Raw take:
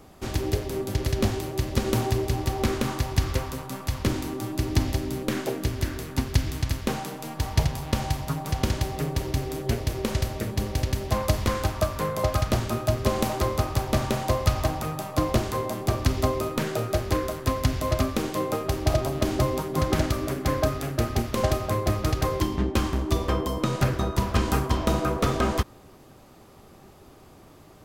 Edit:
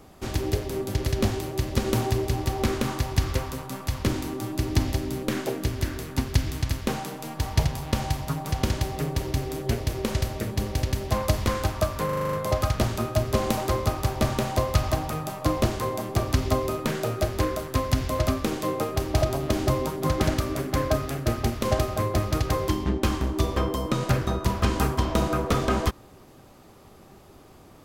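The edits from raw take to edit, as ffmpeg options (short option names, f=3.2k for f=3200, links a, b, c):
-filter_complex "[0:a]asplit=8[a][b][c][d][e][f][g][h];[a]atrim=end=12.092[i];[b]atrim=start=12.048:end=12.092[j];[c]atrim=start=12.048:end=12.092[k];[d]atrim=start=12.048:end=12.092[l];[e]atrim=start=12.048:end=12.092[m];[f]atrim=start=12.048:end=12.092[n];[g]atrim=start=12.048:end=12.092[o];[h]atrim=start=12.048[p];[i][j]acrossfade=d=0.004:c1=hsin:c2=hsin[q];[q][k]acrossfade=d=0.004:c1=hsin:c2=hsin[r];[r][l]acrossfade=d=0.004:c1=hsin:c2=hsin[s];[s][m]acrossfade=d=0.004:c1=hsin:c2=hsin[t];[t][n]acrossfade=d=0.004:c1=hsin:c2=hsin[u];[u][o]acrossfade=d=0.004:c1=hsin:c2=hsin[v];[v][p]acrossfade=d=0.004:c1=hsin:c2=hsin"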